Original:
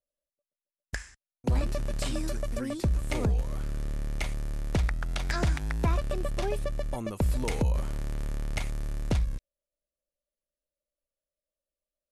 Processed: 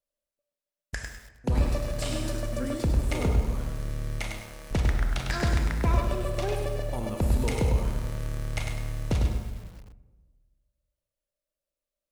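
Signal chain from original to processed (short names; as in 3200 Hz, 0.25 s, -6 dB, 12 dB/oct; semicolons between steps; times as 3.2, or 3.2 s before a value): 4.21–4.71 HPF 340 Hz 12 dB/oct; on a send at -5 dB: reverb RT60 1.4 s, pre-delay 24 ms; on the sum: lo-fi delay 0.101 s, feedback 35%, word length 8-bit, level -5 dB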